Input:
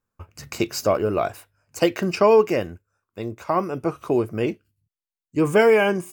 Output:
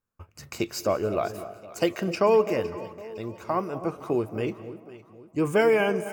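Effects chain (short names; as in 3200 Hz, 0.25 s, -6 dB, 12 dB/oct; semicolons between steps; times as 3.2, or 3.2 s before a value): echo with dull and thin repeats by turns 0.255 s, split 820 Hz, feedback 62%, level -12 dB; reverb RT60 1.2 s, pre-delay 0.128 s, DRR 16.5 dB; gain -5 dB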